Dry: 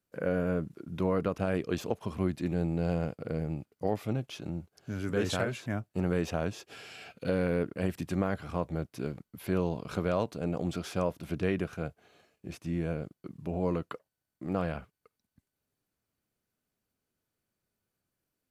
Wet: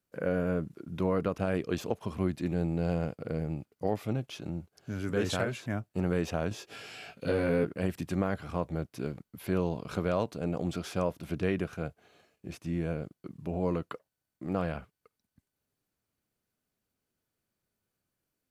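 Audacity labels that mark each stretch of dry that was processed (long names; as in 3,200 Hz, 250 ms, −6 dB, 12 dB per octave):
6.490000	7.720000	double-tracking delay 19 ms −2.5 dB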